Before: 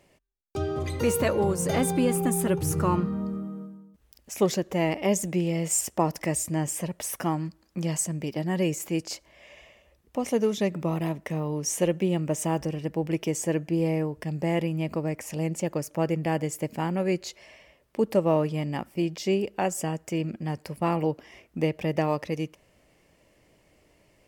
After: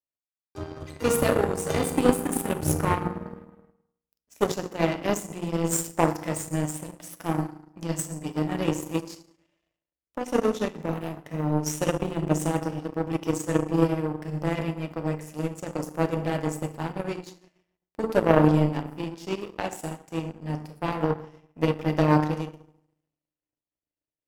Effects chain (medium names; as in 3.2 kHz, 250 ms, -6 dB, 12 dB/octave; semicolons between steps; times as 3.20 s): band-stop 2.2 kHz; FDN reverb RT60 1.2 s, low-frequency decay 1.35×, high-frequency decay 0.6×, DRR 2 dB; power-law waveshaper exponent 2; trim +6.5 dB